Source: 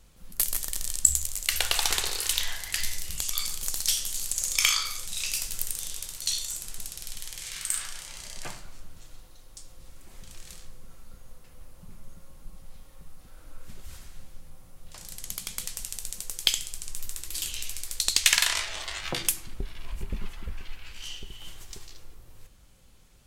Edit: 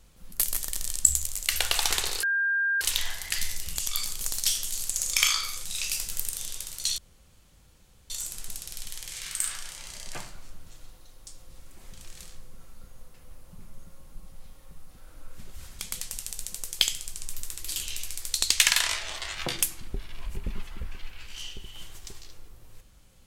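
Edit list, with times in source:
0:02.23: insert tone 1,600 Hz −22.5 dBFS 0.58 s
0:06.40: splice in room tone 1.12 s
0:14.09–0:15.45: remove

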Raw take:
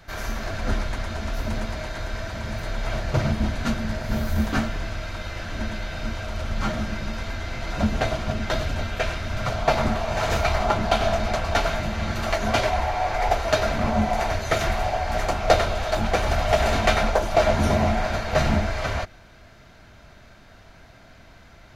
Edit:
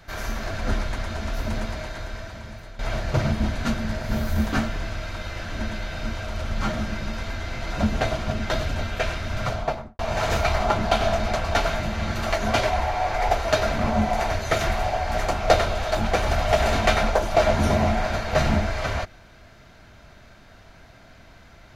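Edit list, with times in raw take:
0:01.65–0:02.79: fade out, to −15 dB
0:09.44–0:09.99: fade out and dull

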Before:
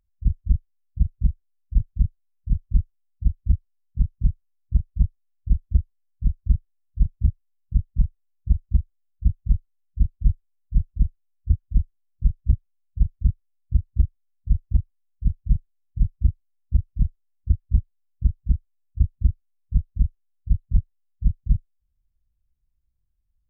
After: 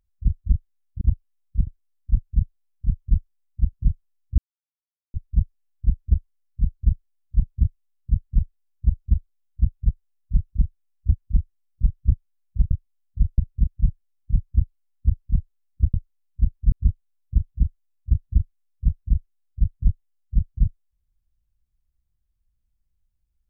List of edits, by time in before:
0:01.01–0:01.30: swap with 0:14.68–0:15.34
0:03.36–0:04.12: remove
0:04.77: splice in silence 0.76 s
0:09.52–0:10.30: move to 0:17.61
0:13.12–0:14.01: remove

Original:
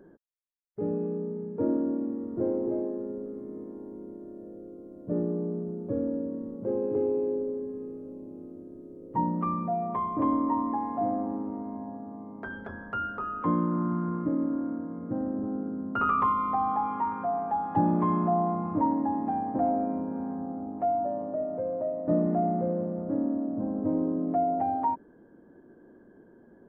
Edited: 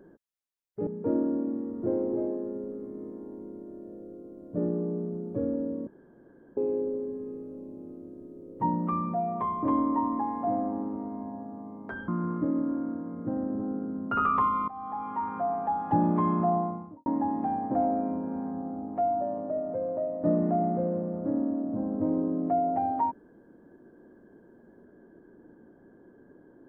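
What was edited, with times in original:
0:00.87–0:01.41: remove
0:06.41–0:07.11: fill with room tone
0:12.62–0:13.92: remove
0:16.52–0:17.23: fade in, from −18.5 dB
0:18.32–0:18.90: fade out and dull

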